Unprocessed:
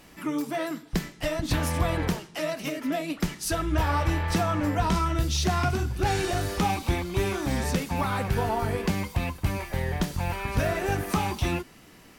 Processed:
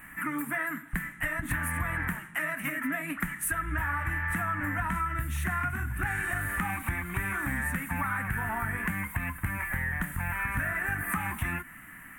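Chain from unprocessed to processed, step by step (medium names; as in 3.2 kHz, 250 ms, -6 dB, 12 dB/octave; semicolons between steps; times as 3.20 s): FFT filter 270 Hz 0 dB, 420 Hz -17 dB, 1.8 kHz +15 dB, 4.9 kHz -27 dB, 8.8 kHz +5 dB, 13 kHz +8 dB; compression 5:1, threshold -28 dBFS, peak gain reduction 10 dB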